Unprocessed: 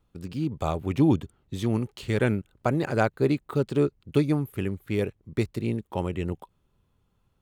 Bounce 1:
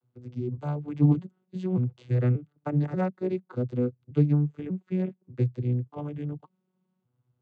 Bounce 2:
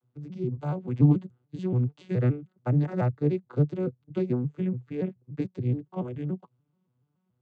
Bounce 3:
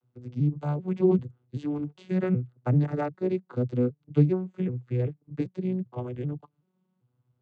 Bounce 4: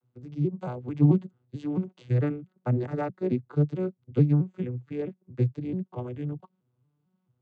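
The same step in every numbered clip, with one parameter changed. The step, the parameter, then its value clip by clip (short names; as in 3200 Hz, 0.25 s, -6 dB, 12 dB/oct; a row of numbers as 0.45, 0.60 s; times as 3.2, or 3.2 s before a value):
arpeggiated vocoder, a note every: 0.586, 0.143, 0.389, 0.22 s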